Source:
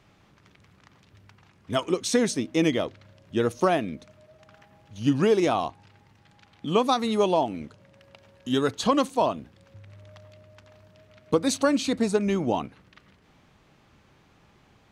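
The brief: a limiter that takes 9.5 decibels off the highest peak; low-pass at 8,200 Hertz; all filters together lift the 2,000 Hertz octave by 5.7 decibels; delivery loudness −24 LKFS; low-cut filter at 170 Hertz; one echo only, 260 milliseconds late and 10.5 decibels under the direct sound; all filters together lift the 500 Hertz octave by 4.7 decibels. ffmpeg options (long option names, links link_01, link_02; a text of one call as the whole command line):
ffmpeg -i in.wav -af "highpass=170,lowpass=8200,equalizer=frequency=500:width_type=o:gain=5.5,equalizer=frequency=2000:width_type=o:gain=7,alimiter=limit=-13.5dB:level=0:latency=1,aecho=1:1:260:0.299,volume=1.5dB" out.wav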